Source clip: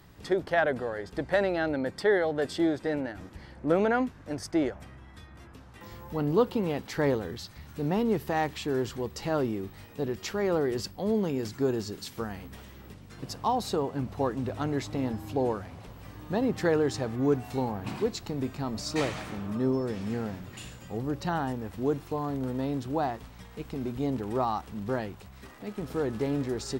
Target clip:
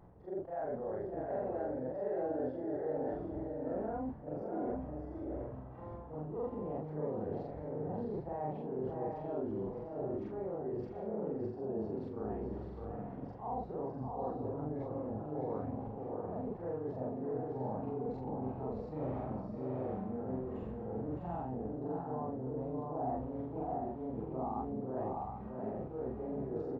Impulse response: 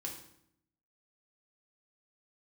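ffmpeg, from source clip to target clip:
-af "afftfilt=real='re':imag='-im':win_size=4096:overlap=0.75,areverse,acompressor=threshold=-41dB:ratio=12,areverse,lowpass=frequency=730:width_type=q:width=1.8,aecho=1:1:610|696|761|785:0.562|0.473|0.376|0.119,volume=2.5dB"

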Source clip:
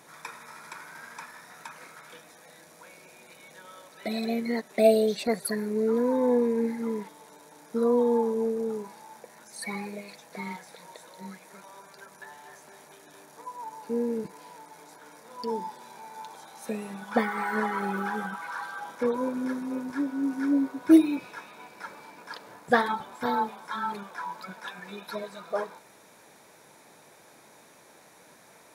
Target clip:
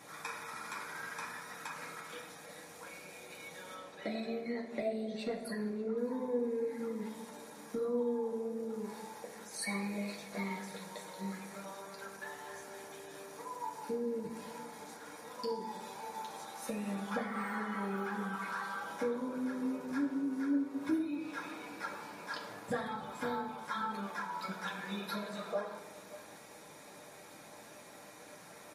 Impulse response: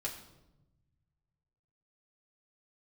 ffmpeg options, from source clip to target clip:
-filter_complex "[0:a]acompressor=threshold=-36dB:ratio=5,asettb=1/sr,asplit=3[link_01][link_02][link_03];[link_01]atrim=end=3.744[link_04];[link_02]atrim=start=3.74:end=5.98,asetpts=PTS-STARTPTS,afade=type=in:duration=0.004:curve=qsin,afade=type=out:start_time=2.236:duration=0.004:curve=qsin,aemphasis=mode=reproduction:type=50kf[link_05];[link_03]atrim=start=5.976[link_06];[link_04][link_05]acrossfade=duration=0.004:curve1=hsin:curve2=qsin[link_07];[link_07][link_06]acrossfade=duration=0.004:curve1=qsin:curve2=hsin,asplit=2[link_08][link_09];[link_09]adelay=583.1,volume=-17dB,highshelf=frequency=4000:gain=-13.1[link_10];[link_08][link_10]amix=inputs=2:normalize=0[link_11];[1:a]atrim=start_sample=2205,asetrate=43659,aresample=44100[link_12];[link_11][link_12]afir=irnorm=-1:irlink=0,volume=1dB" -ar 44100 -c:a libmp3lame -b:a 56k

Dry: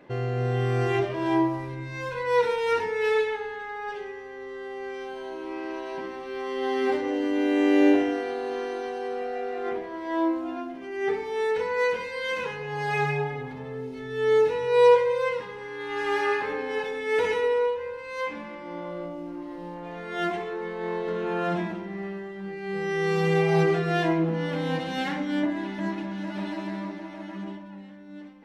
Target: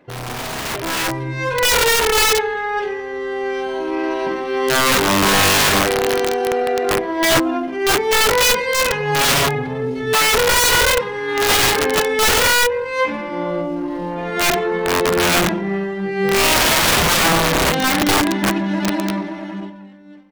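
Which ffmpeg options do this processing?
ffmpeg -i in.wav -af "aeval=exprs='(mod(13.3*val(0)+1,2)-1)/13.3':channel_layout=same,atempo=1.4,dynaudnorm=framelen=200:gausssize=11:maxgain=13dB" out.wav

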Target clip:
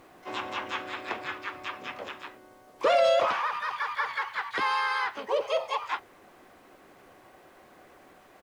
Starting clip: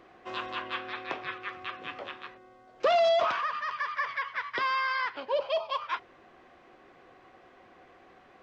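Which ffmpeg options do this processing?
ffmpeg -i in.wav -filter_complex "[0:a]acrusher=bits=10:mix=0:aa=0.000001,asplit=4[link_01][link_02][link_03][link_04];[link_02]asetrate=35002,aresample=44100,atempo=1.25992,volume=-6dB[link_05];[link_03]asetrate=37084,aresample=44100,atempo=1.18921,volume=-9dB[link_06];[link_04]asetrate=88200,aresample=44100,atempo=0.5,volume=-15dB[link_07];[link_01][link_05][link_06][link_07]amix=inputs=4:normalize=0" out.wav

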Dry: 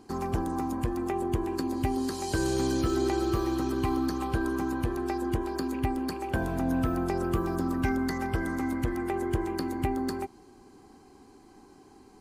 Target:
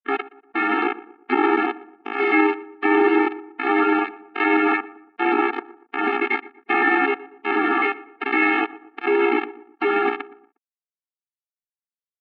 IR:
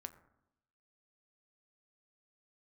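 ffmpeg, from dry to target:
-filter_complex "[0:a]bandreject=frequency=370:width=12,tremolo=f=1.3:d=0.99,lowshelf=frequency=320:gain=-9,aresample=16000,acrusher=bits=3:dc=4:mix=0:aa=0.000001,aresample=44100,bandreject=frequency=60:width_type=h:width=6,bandreject=frequency=120:width_type=h:width=6,bandreject=frequency=180:width_type=h:width=6,asetrate=66075,aresample=44100,atempo=0.66742,asplit=2[link_01][link_02];[link_02]adelay=119,lowpass=frequency=1600:poles=1,volume=-21dB,asplit=2[link_03][link_04];[link_04]adelay=119,lowpass=frequency=1600:poles=1,volume=0.46,asplit=2[link_05][link_06];[link_06]adelay=119,lowpass=frequency=1600:poles=1,volume=0.46[link_07];[link_03][link_05][link_07]amix=inputs=3:normalize=0[link_08];[link_01][link_08]amix=inputs=2:normalize=0,highpass=frequency=310:width_type=q:width=0.5412,highpass=frequency=310:width_type=q:width=1.307,lowpass=frequency=2700:width_type=q:width=0.5176,lowpass=frequency=2700:width_type=q:width=0.7071,lowpass=frequency=2700:width_type=q:width=1.932,afreqshift=-180,alimiter=level_in=35dB:limit=-1dB:release=50:level=0:latency=1,afftfilt=real='re*eq(mod(floor(b*sr/1024/230),2),1)':imag='im*eq(mod(floor(b*sr/1024/230),2),1)':win_size=1024:overlap=0.75,volume=-5.5dB"

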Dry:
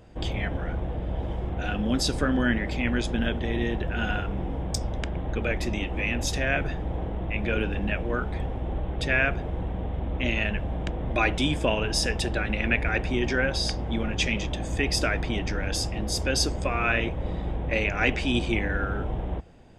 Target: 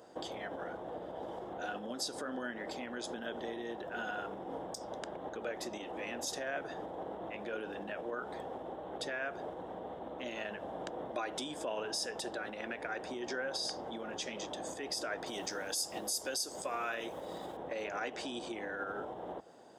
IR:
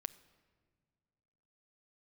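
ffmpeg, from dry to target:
-filter_complex "[0:a]asettb=1/sr,asplit=3[link_01][link_02][link_03];[link_01]atrim=end=15.264[link_04];[link_02]atrim=start=15.26:end=17.57,asetpts=PTS-STARTPTS,afade=type=in:duration=0.004:curve=qsin,afade=type=out:start_time=2.306:duration=0.004:curve=qsin,aemphasis=mode=production:type=75fm[link_05];[link_03]atrim=start=17.566[link_06];[link_04][link_05]acrossfade=duration=0.004:curve1=hsin:curve2=qsin[link_07];[link_07][link_06]acrossfade=duration=0.004:curve1=qsin:curve2=hsin,acompressor=threshold=-27dB:ratio=6,equalizer=frequency=2400:width=1.8:gain=-14.5,alimiter=level_in=3dB:limit=-24dB:level=0:latency=1:release=141,volume=-3dB,highpass=440,volume=3dB"

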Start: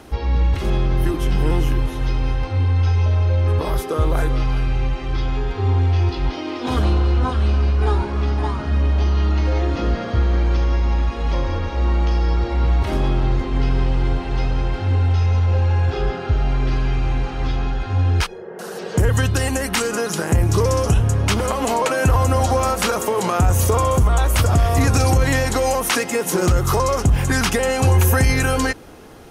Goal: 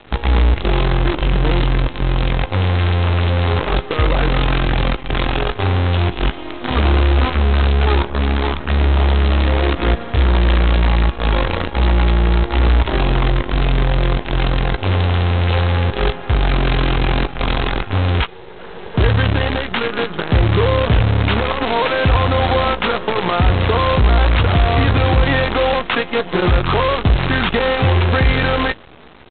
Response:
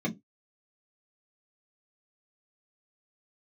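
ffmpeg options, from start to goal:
-filter_complex "[0:a]aresample=8000,acrusher=bits=4:dc=4:mix=0:aa=0.000001,aresample=44100,asplit=2[link_01][link_02];[link_02]adelay=17,volume=-13.5dB[link_03];[link_01][link_03]amix=inputs=2:normalize=0,volume=1.5dB"

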